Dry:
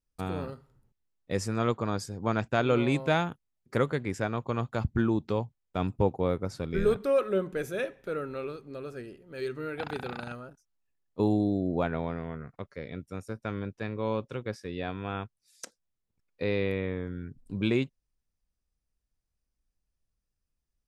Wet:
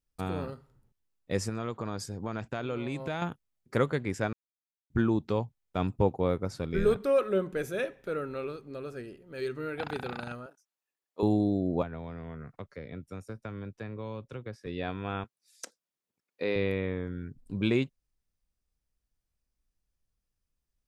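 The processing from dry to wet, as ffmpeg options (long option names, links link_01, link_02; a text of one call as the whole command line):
ffmpeg -i in.wav -filter_complex "[0:a]asettb=1/sr,asplit=3[link_01][link_02][link_03];[link_01]atrim=end=1.494[link_04];[link_02]atrim=start=1.49:end=3.22,asetpts=PTS-STARTPTS,afade=type=in:duration=0.004:curve=qsin,afade=type=out:start_time=1.726:duration=0.004:curve=qsin,acompressor=threshold=-30dB:ratio=6:attack=3.2:release=140:knee=1:detection=peak[link_05];[link_03]atrim=start=3.216[link_06];[link_04][link_05]acrossfade=duration=0.004:curve1=hsin:curve2=qsin[link_07];[link_07][link_06]acrossfade=duration=0.004:curve1=qsin:curve2=hsin,asettb=1/sr,asplit=3[link_08][link_09][link_10];[link_08]atrim=end=10.464[link_11];[link_09]atrim=start=10.46:end=11.23,asetpts=PTS-STARTPTS,afade=type=in:duration=0.004:curve=qsin,afade=type=out:start_time=0.766:duration=0.004:curve=qsin,highpass=430[link_12];[link_10]atrim=start=11.226[link_13];[link_11][link_12]acrossfade=duration=0.004:curve1=hsin:curve2=qsin[link_14];[link_14][link_13]acrossfade=duration=0.004:curve1=qsin:curve2=hsin,asettb=1/sr,asplit=3[link_15][link_16][link_17];[link_15]atrim=end=11.824[link_18];[link_16]atrim=start=11.82:end=14.67,asetpts=PTS-STARTPTS,afade=type=in:duration=0.004:curve=qsin,afade=type=out:start_time=2.846:duration=0.004:curve=qsin,acrossover=split=140|2200[link_19][link_20][link_21];[link_19]acompressor=threshold=-42dB:ratio=4[link_22];[link_20]acompressor=threshold=-39dB:ratio=4[link_23];[link_21]acompressor=threshold=-59dB:ratio=4[link_24];[link_22][link_23][link_24]amix=inputs=3:normalize=0[link_25];[link_17]atrim=start=14.666[link_26];[link_18][link_25]acrossfade=duration=0.004:curve1=hsin:curve2=qsin[link_27];[link_27][link_26]acrossfade=duration=0.004:curve1=qsin:curve2=hsin,asettb=1/sr,asplit=3[link_28][link_29][link_30];[link_28]atrim=end=15.244[link_31];[link_29]atrim=start=15.24:end=16.56,asetpts=PTS-STARTPTS,afade=type=in:duration=0.004:curve=qsin,afade=type=out:start_time=1.316:duration=0.004:curve=qsin,highpass=230[link_32];[link_30]atrim=start=16.556[link_33];[link_31][link_32]acrossfade=duration=0.004:curve1=hsin:curve2=qsin[link_34];[link_34][link_33]acrossfade=duration=0.004:curve1=qsin:curve2=hsin,asplit=3[link_35][link_36][link_37];[link_35]atrim=end=4.33,asetpts=PTS-STARTPTS,afade=type=out:start_time=4.326:duration=0.004:curve=hsin[link_38];[link_36]atrim=start=4.33:end=4.9,asetpts=PTS-STARTPTS,volume=0[link_39];[link_37]atrim=start=4.9,asetpts=PTS-STARTPTS,afade=type=in:duration=0.004:curve=hsin[link_40];[link_38][link_39][link_40]concat=n=3:v=0:a=1" out.wav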